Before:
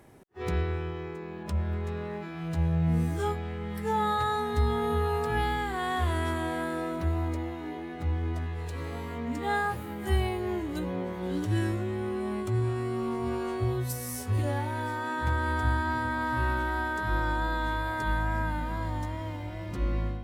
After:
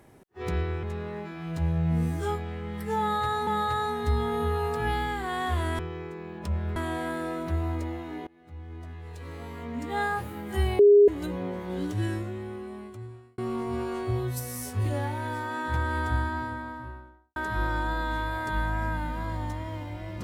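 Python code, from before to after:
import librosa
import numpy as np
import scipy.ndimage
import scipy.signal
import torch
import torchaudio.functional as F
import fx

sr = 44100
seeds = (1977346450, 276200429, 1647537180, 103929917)

y = fx.studio_fade_out(x, sr, start_s=15.52, length_s=1.37)
y = fx.edit(y, sr, fx.move(start_s=0.83, length_s=0.97, to_s=6.29),
    fx.repeat(start_s=3.97, length_s=0.47, count=2),
    fx.fade_in_from(start_s=7.8, length_s=1.78, floor_db=-24.0),
    fx.bleep(start_s=10.32, length_s=0.29, hz=409.0, db=-12.0),
    fx.fade_out_span(start_s=11.32, length_s=1.59), tone=tone)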